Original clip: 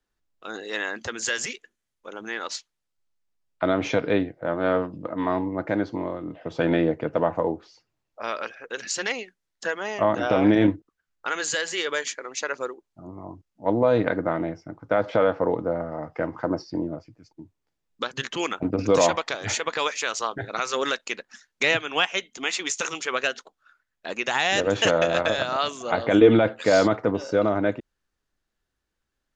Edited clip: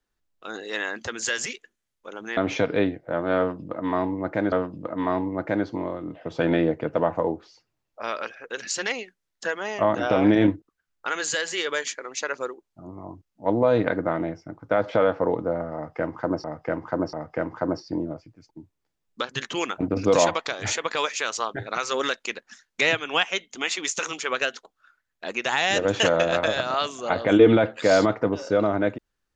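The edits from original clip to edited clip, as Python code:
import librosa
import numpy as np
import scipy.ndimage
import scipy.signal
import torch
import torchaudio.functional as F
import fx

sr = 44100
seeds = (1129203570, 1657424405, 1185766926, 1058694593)

y = fx.edit(x, sr, fx.cut(start_s=2.37, length_s=1.34),
    fx.repeat(start_s=4.72, length_s=1.14, count=2),
    fx.repeat(start_s=15.95, length_s=0.69, count=3), tone=tone)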